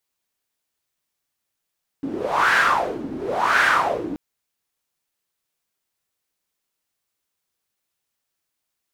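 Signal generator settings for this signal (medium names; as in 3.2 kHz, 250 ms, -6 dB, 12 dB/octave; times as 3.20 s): wind-like swept noise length 2.13 s, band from 280 Hz, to 1.6 kHz, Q 4.7, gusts 2, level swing 14 dB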